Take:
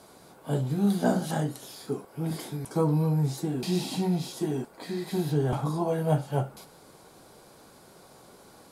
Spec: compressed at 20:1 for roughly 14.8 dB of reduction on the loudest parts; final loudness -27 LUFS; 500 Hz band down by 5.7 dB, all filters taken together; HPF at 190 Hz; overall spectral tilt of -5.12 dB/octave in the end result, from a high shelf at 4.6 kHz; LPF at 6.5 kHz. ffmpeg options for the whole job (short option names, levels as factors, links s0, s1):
-af "highpass=190,lowpass=6500,equalizer=f=500:t=o:g=-7.5,highshelf=f=4600:g=3.5,acompressor=threshold=0.0141:ratio=20,volume=5.96"